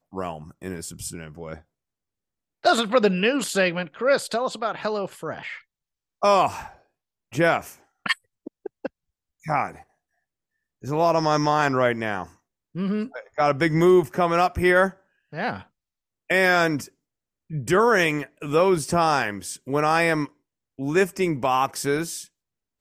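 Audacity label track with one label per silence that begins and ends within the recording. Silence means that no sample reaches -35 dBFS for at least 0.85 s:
1.580000	2.650000	silence
9.750000	10.840000	silence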